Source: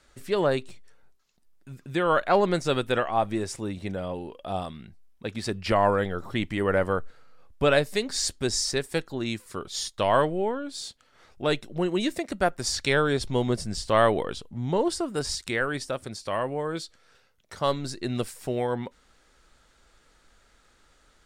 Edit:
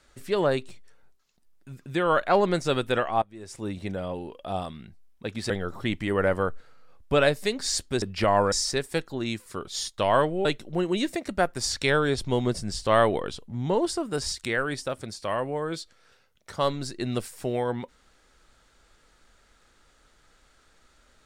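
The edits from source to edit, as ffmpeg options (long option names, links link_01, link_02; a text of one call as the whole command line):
ffmpeg -i in.wav -filter_complex "[0:a]asplit=6[link_01][link_02][link_03][link_04][link_05][link_06];[link_01]atrim=end=3.22,asetpts=PTS-STARTPTS,afade=type=out:start_time=3.216:duration=0.004:curve=hsin:silence=0.0749894[link_07];[link_02]atrim=start=3.22:end=5.502,asetpts=PTS-STARTPTS,afade=type=in:duration=0.45:curve=qua:silence=0.0749894[link_08];[link_03]atrim=start=5.998:end=8.522[link_09];[link_04]atrim=start=5.498:end=6.002[link_10];[link_05]atrim=start=8.518:end=10.452[link_11];[link_06]atrim=start=11.478[link_12];[link_07][link_08]concat=n=2:v=0:a=1[link_13];[link_13][link_09]acrossfade=duration=0.004:curve1=hsin:curve2=hsin[link_14];[link_14][link_10]acrossfade=duration=0.004:curve1=hsin:curve2=hsin[link_15];[link_15][link_11]acrossfade=duration=0.004:curve1=hsin:curve2=hsin[link_16];[link_16][link_12]acrossfade=duration=0.004:curve1=hsin:curve2=hsin" out.wav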